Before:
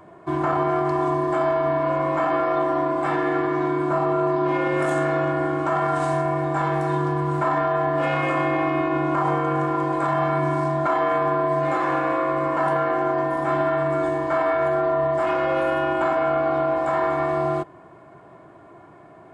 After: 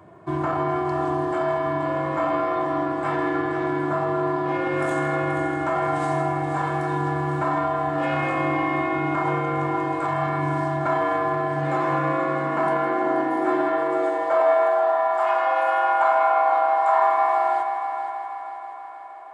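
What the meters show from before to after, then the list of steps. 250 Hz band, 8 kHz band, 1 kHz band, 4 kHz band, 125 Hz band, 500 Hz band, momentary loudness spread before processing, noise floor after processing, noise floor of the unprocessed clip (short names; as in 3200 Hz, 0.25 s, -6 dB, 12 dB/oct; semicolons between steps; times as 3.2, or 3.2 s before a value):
-1.5 dB, n/a, +1.5 dB, -1.5 dB, -1.5 dB, -2.0 dB, 2 LU, -35 dBFS, -47 dBFS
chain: multi-head echo 0.16 s, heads first and third, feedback 65%, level -10 dB; high-pass sweep 91 Hz -> 840 Hz, 11.36–15.11; gain -2.5 dB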